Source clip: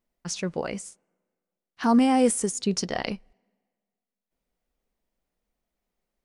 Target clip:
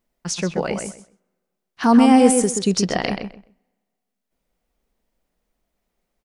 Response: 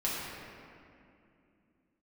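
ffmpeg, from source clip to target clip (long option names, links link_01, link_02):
-filter_complex "[0:a]asplit=2[link_01][link_02];[link_02]adelay=129,lowpass=frequency=2700:poles=1,volume=-5.5dB,asplit=2[link_03][link_04];[link_04]adelay=129,lowpass=frequency=2700:poles=1,volume=0.21,asplit=2[link_05][link_06];[link_06]adelay=129,lowpass=frequency=2700:poles=1,volume=0.21[link_07];[link_01][link_03][link_05][link_07]amix=inputs=4:normalize=0,volume=6dB"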